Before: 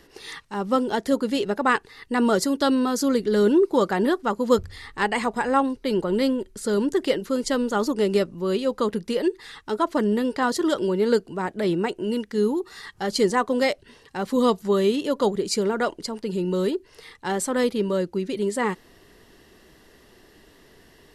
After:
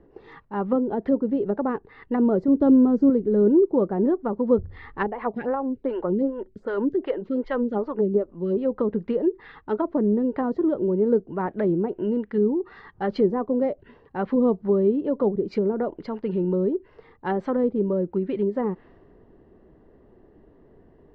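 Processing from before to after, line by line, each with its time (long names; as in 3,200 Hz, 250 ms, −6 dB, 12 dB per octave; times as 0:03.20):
0:02.48–0:03.10: low-shelf EQ 320 Hz +8.5 dB
0:05.07–0:08.57: phaser with staggered stages 2.6 Hz
whole clip: low-pass that shuts in the quiet parts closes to 630 Hz, open at −17.5 dBFS; low-pass filter 6,400 Hz; treble cut that deepens with the level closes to 530 Hz, closed at −20 dBFS; level +1.5 dB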